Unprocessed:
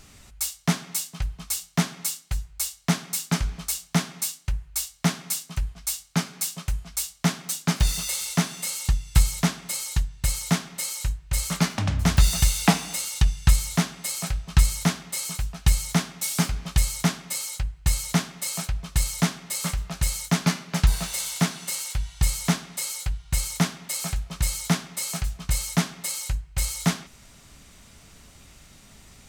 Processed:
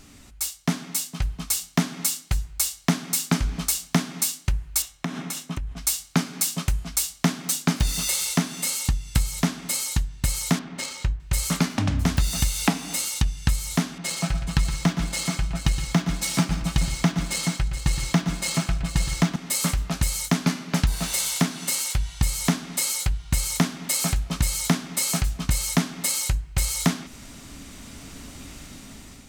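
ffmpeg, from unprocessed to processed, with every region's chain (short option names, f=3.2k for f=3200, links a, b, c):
-filter_complex "[0:a]asettb=1/sr,asplit=3[a][b][c];[a]atrim=end=4.824[d];[b]atrim=start=4.82:end=5.77,asetpts=PTS-STARTPTS,afade=t=in:d=0.004:c=qsin,afade=t=out:st=0.946:d=0.004:c=qsin,highshelf=f=4.4k:g=-11.5,acompressor=threshold=-33dB:ratio=20:attack=3.2:release=140:knee=1:detection=peak,bandreject=f=4.6k:w=10[e];[c]atrim=start=5.766[f];[d][e]acrossfade=d=0.004:c1=hsin:c2=qsin[g];[g][f]acrossfade=d=0.004:c1=qsin:c2=hsin,asettb=1/sr,asplit=3[h][i][j];[h]atrim=end=10.594[k];[i]atrim=start=10.59:end=11.2,asetpts=PTS-STARTPTS,afade=t=in:d=0.004:c=qsin,afade=t=out:st=0.606:d=0.004:c=qsin,equalizer=f=11k:w=7.9:g=-6.5,adynamicsmooth=sensitivity=3.5:basefreq=2.8k[l];[j]atrim=start=11.196[m];[k][l]acrossfade=d=0.004:c1=hsin:c2=qsin[n];[n][m]acrossfade=d=0.004:c1=qsin:c2=hsin,asettb=1/sr,asplit=3[o][p][q];[o]atrim=end=13.984[r];[p]atrim=start=13.98:end=19.36,asetpts=PTS-STARTPTS,afade=t=in:d=0.004:c=qsin,afade=t=out:st=5.376:d=0.004:c=qsin,aecho=1:1:6:0.51,atrim=end_sample=237258,adynamicsmooth=sensitivity=5:basefreq=3.3k,aecho=1:1:117|171|425:0.335|0.112|0.251,atrim=end_sample=237258[s];[q]atrim=start=19.356[t];[r][s]acrossfade=d=0.004:c1=hsin:c2=qsin[u];[u][t]acrossfade=d=0.004:c1=qsin:c2=hsin,dynaudnorm=f=520:g=5:m=11.5dB,equalizer=f=270:t=o:w=0.53:g=10.5,acompressor=threshold=-20dB:ratio=3"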